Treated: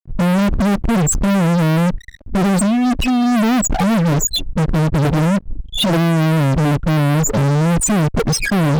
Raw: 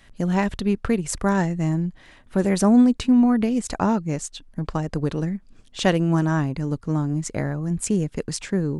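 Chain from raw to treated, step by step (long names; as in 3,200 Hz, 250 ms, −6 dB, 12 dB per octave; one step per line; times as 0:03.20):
compressor whose output falls as the input rises −21 dBFS, ratio −0.5
spectral peaks only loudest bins 4
fuzz pedal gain 43 dB, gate −49 dBFS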